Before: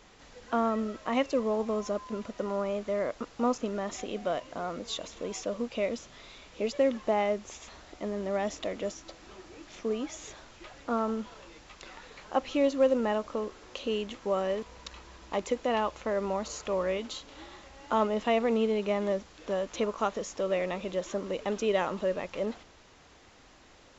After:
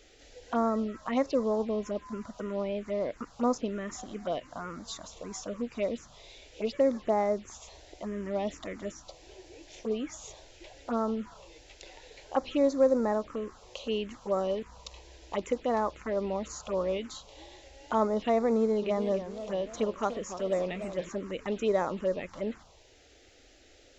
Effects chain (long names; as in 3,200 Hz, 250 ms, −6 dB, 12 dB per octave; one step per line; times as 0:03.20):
phaser swept by the level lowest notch 160 Hz, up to 2,900 Hz, full sweep at −24 dBFS
0:18.54–0:21.09: feedback echo with a swinging delay time 287 ms, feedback 44%, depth 193 cents, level −11 dB
level +1 dB